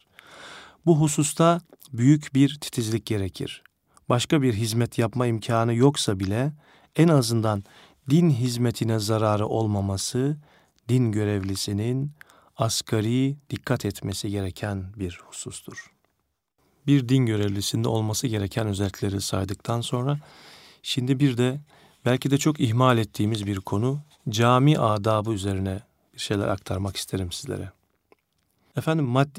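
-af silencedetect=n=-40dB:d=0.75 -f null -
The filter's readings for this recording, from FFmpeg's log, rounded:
silence_start: 15.86
silence_end: 16.86 | silence_duration: 1.00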